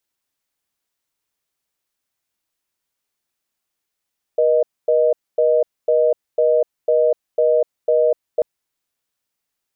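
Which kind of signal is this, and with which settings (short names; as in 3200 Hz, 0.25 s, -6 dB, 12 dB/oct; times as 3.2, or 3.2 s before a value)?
call progress tone reorder tone, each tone -15 dBFS 4.04 s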